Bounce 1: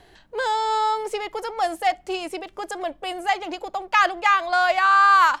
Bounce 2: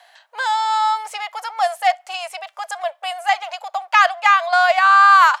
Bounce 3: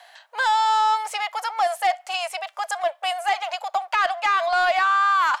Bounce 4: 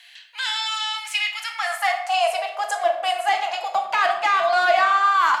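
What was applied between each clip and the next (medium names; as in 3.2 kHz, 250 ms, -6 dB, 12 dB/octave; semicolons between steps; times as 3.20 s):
elliptic high-pass 640 Hz, stop band 50 dB; trim +5 dB
peak limiter -12 dBFS, peak gain reduction 10 dB; saturation -13.5 dBFS, distortion -20 dB; trim +1.5 dB
high-pass sweep 2.5 kHz -> 180 Hz, 1.41–2.93 s; simulated room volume 160 m³, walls mixed, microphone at 0.71 m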